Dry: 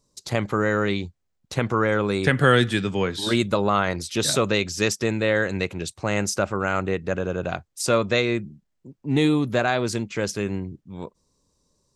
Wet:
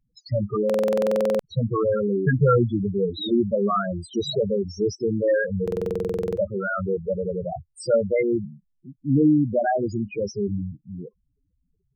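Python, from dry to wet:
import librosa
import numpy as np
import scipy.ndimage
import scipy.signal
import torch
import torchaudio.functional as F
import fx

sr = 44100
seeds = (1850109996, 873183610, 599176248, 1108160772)

y = fx.spec_topn(x, sr, count=4)
y = fx.buffer_glitch(y, sr, at_s=(0.65, 5.63), block=2048, repeats=15)
y = y * 10.0 ** (3.5 / 20.0)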